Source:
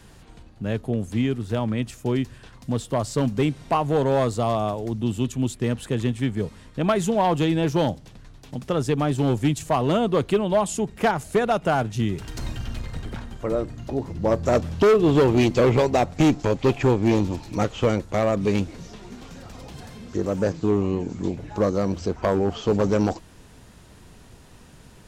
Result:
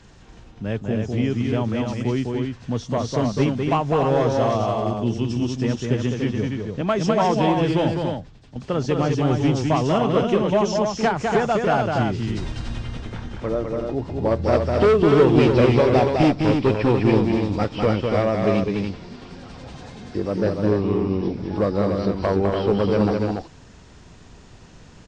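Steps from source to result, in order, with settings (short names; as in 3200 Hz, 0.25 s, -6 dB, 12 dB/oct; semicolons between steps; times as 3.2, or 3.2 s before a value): nonlinear frequency compression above 3100 Hz 1.5:1; loudspeakers at several distances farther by 70 m -4 dB, 99 m -5 dB; 6.81–8.56 three-band expander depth 40%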